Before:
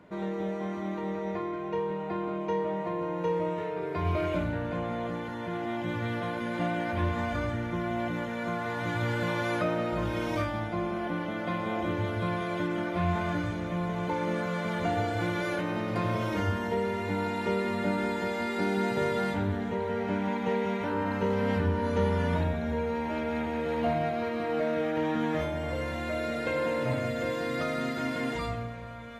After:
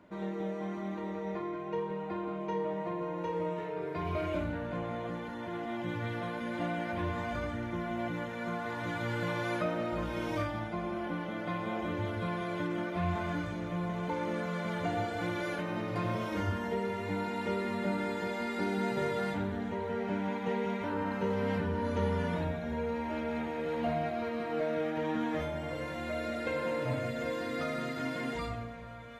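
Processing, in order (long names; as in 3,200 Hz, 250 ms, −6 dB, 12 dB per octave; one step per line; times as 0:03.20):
flanger 0.91 Hz, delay 3 ms, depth 4 ms, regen −53%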